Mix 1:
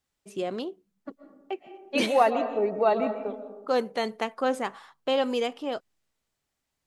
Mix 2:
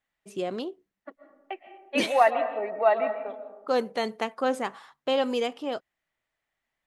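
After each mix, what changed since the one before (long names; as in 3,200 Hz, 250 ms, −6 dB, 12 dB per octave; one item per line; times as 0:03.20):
second voice: add loudspeaker in its box 430–3,400 Hz, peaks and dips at 430 Hz −7 dB, 650 Hz +4 dB, 1,900 Hz +9 dB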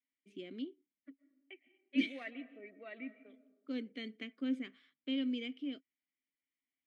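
second voice: send −6.5 dB
master: add formant filter i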